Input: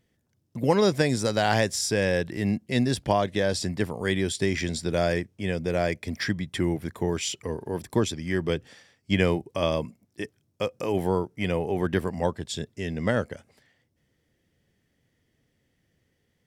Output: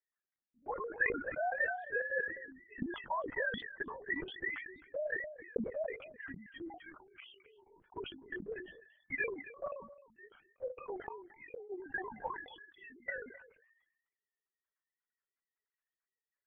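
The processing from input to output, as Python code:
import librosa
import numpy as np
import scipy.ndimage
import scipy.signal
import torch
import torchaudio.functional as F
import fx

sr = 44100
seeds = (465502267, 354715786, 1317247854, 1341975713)

p1 = fx.sine_speech(x, sr)
p2 = fx.dereverb_blind(p1, sr, rt60_s=0.94)
p3 = fx.spec_gate(p2, sr, threshold_db=-15, keep='strong')
p4 = fx.level_steps(p3, sr, step_db=24)
p5 = fx.bandpass_q(p4, sr, hz=1600.0, q=2.3)
p6 = p5 + fx.echo_single(p5, sr, ms=262, db=-16.5, dry=0)
p7 = fx.lpc_vocoder(p6, sr, seeds[0], excitation='whisper', order=16)
p8 = fx.sustainer(p7, sr, db_per_s=75.0)
y = p8 * librosa.db_to_amplitude(2.0)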